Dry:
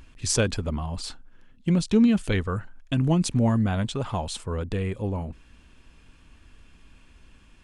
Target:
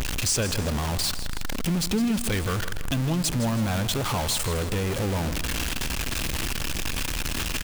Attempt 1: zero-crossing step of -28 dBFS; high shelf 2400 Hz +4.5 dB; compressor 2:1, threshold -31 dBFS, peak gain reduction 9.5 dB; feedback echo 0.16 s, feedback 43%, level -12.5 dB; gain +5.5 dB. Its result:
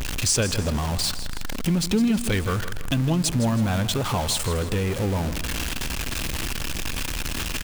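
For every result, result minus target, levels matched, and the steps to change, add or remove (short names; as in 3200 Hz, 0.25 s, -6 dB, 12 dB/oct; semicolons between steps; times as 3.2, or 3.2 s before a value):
compressor: peak gain reduction -4.5 dB; zero-crossing step: distortion -6 dB
change: compressor 2:1, threshold -39.5 dBFS, peak gain reduction 13.5 dB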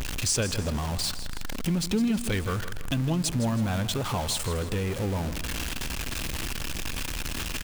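zero-crossing step: distortion -6 dB
change: zero-crossing step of -20 dBFS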